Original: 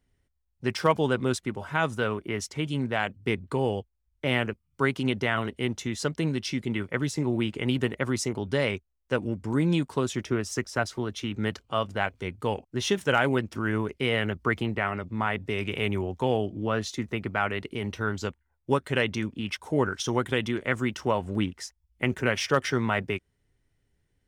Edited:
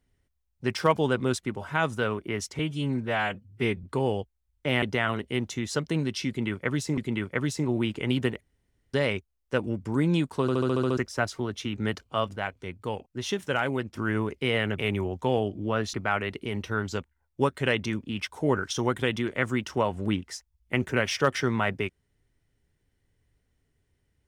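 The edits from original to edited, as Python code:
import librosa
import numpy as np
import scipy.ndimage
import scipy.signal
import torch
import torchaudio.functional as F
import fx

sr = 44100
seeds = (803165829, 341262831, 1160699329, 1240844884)

y = fx.edit(x, sr, fx.stretch_span(start_s=2.59, length_s=0.83, factor=1.5),
    fx.cut(start_s=4.41, length_s=0.7),
    fx.repeat(start_s=6.56, length_s=0.7, count=2),
    fx.room_tone_fill(start_s=7.99, length_s=0.53),
    fx.stutter_over(start_s=10.0, slice_s=0.07, count=8),
    fx.clip_gain(start_s=11.94, length_s=1.6, db=-4.0),
    fx.cut(start_s=14.37, length_s=1.39),
    fx.cut(start_s=16.91, length_s=0.32), tone=tone)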